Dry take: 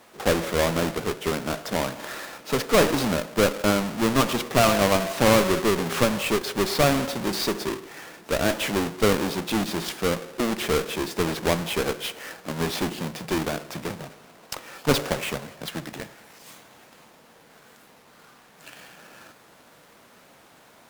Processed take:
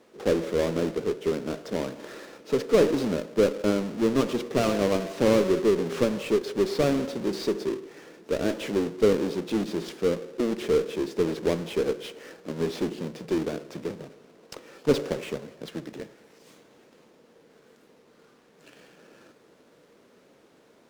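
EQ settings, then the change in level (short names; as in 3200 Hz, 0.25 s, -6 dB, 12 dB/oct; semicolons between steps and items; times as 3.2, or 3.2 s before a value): EQ curve 100 Hz 0 dB, 450 Hz +11 dB, 730 Hz -2 dB, 5800 Hz -1 dB, 14000 Hz -9 dB; -8.0 dB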